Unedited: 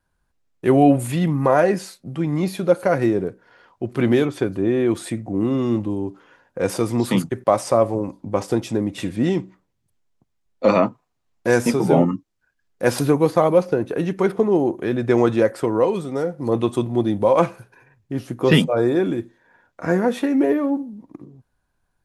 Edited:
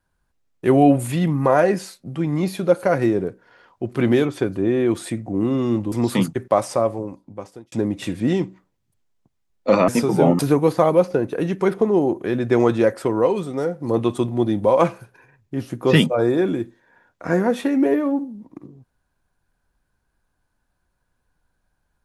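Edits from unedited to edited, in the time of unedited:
0:05.92–0:06.88: remove
0:07.41–0:08.68: fade out
0:10.84–0:11.59: remove
0:12.10–0:12.97: remove

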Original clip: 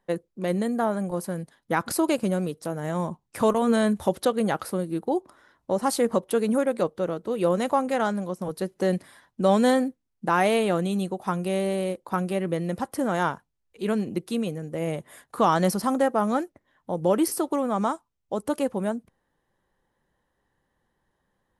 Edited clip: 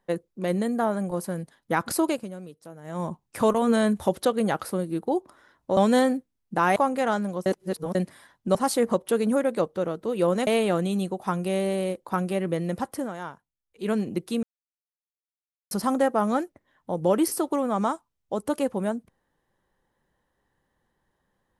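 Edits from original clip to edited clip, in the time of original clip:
0:02.03–0:03.09: duck −13 dB, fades 0.25 s
0:05.77–0:07.69: swap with 0:09.48–0:10.47
0:08.39–0:08.88: reverse
0:12.89–0:13.92: duck −11.5 dB, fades 0.25 s
0:14.43–0:15.71: silence

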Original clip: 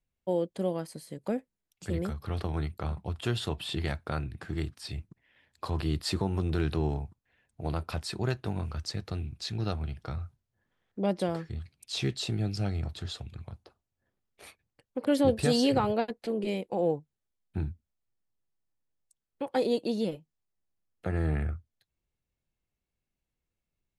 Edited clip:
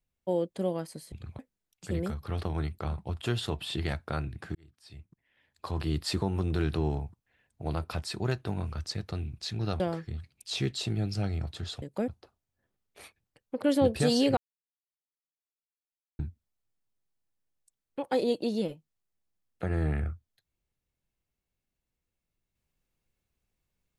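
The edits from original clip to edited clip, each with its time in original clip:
0:01.12–0:01.38: swap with 0:13.24–0:13.51
0:04.54–0:05.96: fade in
0:09.79–0:11.22: remove
0:15.80–0:17.62: silence

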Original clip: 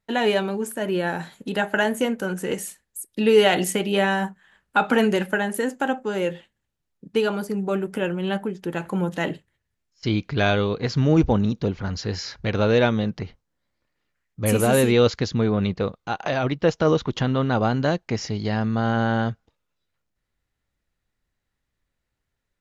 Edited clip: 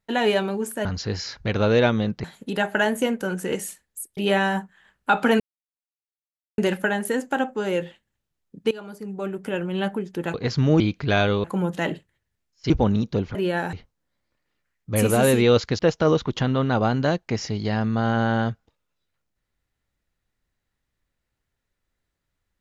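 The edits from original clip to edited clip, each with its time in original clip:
0:00.85–0:01.23: swap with 0:11.84–0:13.23
0:03.16–0:03.84: remove
0:05.07: splice in silence 1.18 s
0:07.20–0:08.31: fade in, from −17.5 dB
0:08.83–0:10.09: swap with 0:10.73–0:11.19
0:15.29–0:16.59: remove

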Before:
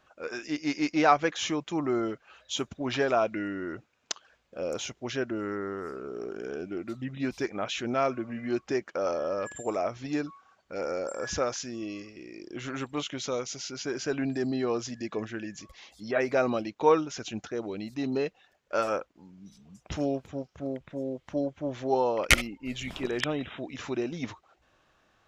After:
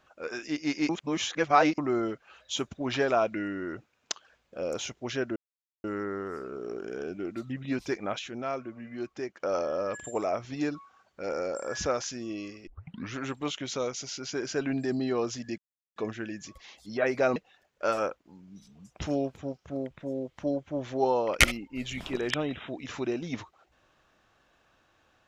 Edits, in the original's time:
0:00.89–0:01.78: reverse
0:05.36: splice in silence 0.48 s
0:07.71–0:08.92: clip gain −6.5 dB
0:12.19: tape start 0.48 s
0:15.10: splice in silence 0.38 s
0:16.50–0:18.26: remove

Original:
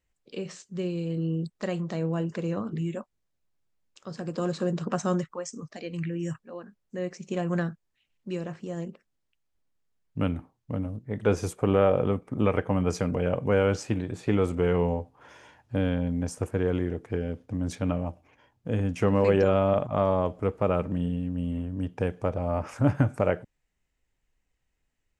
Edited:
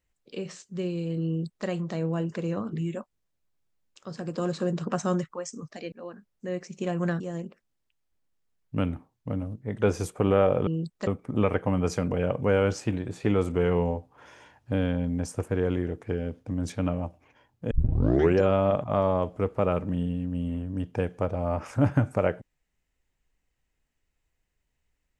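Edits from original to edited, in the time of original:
0:01.27–0:01.67: duplicate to 0:12.10
0:05.92–0:06.42: remove
0:07.70–0:08.63: remove
0:18.74: tape start 0.66 s

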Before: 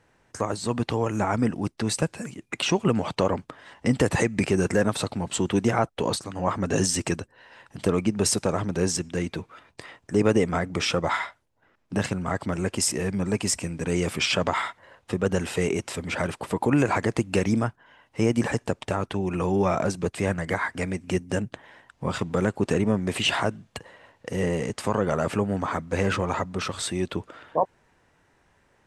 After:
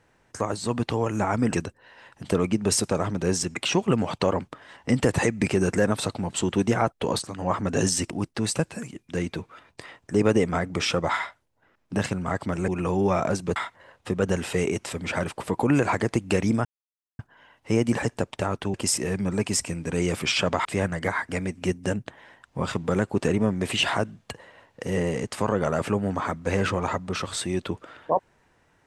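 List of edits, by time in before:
0:01.53–0:02.52: swap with 0:07.07–0:09.09
0:12.68–0:14.59: swap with 0:19.23–0:20.11
0:17.68: splice in silence 0.54 s

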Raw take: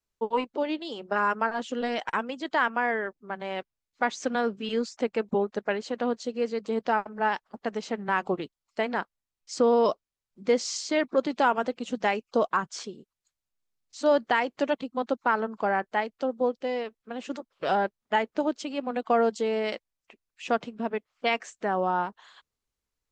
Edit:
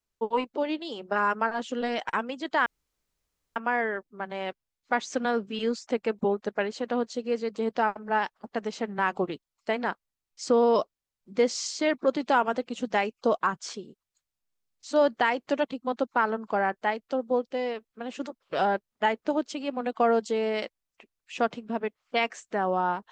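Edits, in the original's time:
0:02.66: splice in room tone 0.90 s

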